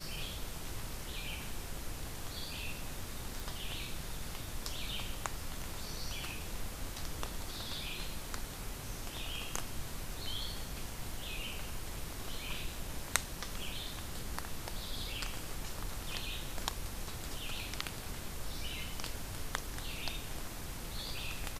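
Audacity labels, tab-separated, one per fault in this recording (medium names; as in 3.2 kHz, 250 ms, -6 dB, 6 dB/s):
3.400000	3.400000	pop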